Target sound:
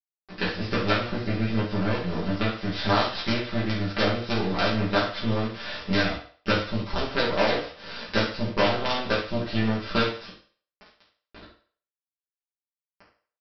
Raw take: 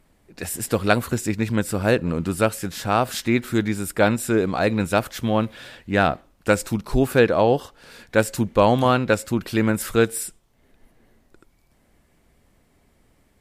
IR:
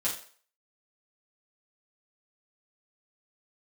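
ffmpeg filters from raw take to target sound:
-filter_complex "[0:a]acompressor=threshold=-30dB:ratio=8,aresample=11025,acrusher=bits=5:dc=4:mix=0:aa=0.000001,aresample=44100,aecho=1:1:17|68:0.562|0.316[link_01];[1:a]atrim=start_sample=2205[link_02];[link_01][link_02]afir=irnorm=-1:irlink=0,volume=4dB"

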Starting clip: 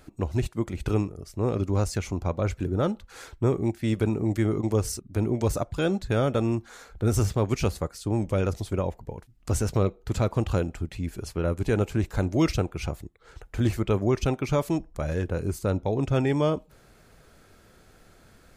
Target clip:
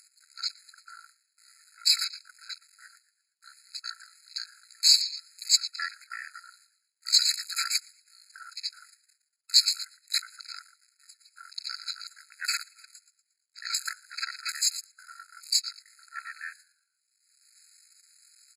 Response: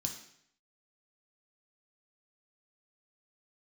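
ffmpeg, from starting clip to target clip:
-filter_complex "[0:a]aeval=exprs='val(0)+0.5*0.0119*sgn(val(0))':channel_layout=same,agate=range=-44dB:threshold=-30dB:ratio=16:detection=peak,acompressor=mode=upward:threshold=-27dB:ratio=2.5,equalizer=frequency=110:width=0.87:gain=-14.5,bandreject=frequency=60:width_type=h:width=6,bandreject=frequency=120:width_type=h:width=6,bandreject=frequency=180:width_type=h:width=6,bandreject=frequency=240:width_type=h:width=6,bandreject=frequency=300:width_type=h:width=6,asplit=5[link_01][link_02][link_03][link_04][link_05];[link_02]adelay=117,afreqshift=-120,volume=-11.5dB[link_06];[link_03]adelay=234,afreqshift=-240,volume=-18.6dB[link_07];[link_04]adelay=351,afreqshift=-360,volume=-25.8dB[link_08];[link_05]adelay=468,afreqshift=-480,volume=-32.9dB[link_09];[link_01][link_06][link_07][link_08][link_09]amix=inputs=5:normalize=0,asplit=2[link_10][link_11];[1:a]atrim=start_sample=2205,asetrate=66150,aresample=44100[link_12];[link_11][link_12]afir=irnorm=-1:irlink=0,volume=-14dB[link_13];[link_10][link_13]amix=inputs=2:normalize=0,aexciter=amount=2.8:drive=7.8:freq=7400,asetrate=23361,aresample=44100,atempo=1.88775,tiltshelf=frequency=860:gain=-4.5,afwtdn=0.0126,afftfilt=real='re*eq(mod(floor(b*sr/1024/1300),2),1)':imag='im*eq(mod(floor(b*sr/1024/1300),2),1)':win_size=1024:overlap=0.75,volume=4dB"

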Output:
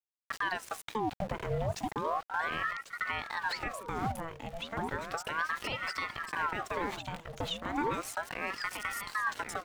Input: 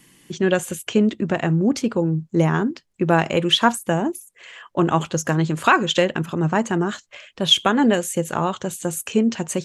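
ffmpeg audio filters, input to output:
ffmpeg -i in.wav -af "lowshelf=frequency=400:gain=-3.5,bandreject=frequency=470:width=12,aeval=exprs='val(0)*gte(abs(val(0)),0.0282)':channel_layout=same,acompressor=threshold=-27dB:ratio=2.5,aecho=1:1:1095|2190|3285|4380:0.316|0.13|0.0532|0.0218,alimiter=limit=-21dB:level=0:latency=1:release=139,highshelf=frequency=4400:gain=-8,aeval=exprs='val(0)*sin(2*PI*980*n/s+980*0.7/0.34*sin(2*PI*0.34*n/s))':channel_layout=same" out.wav

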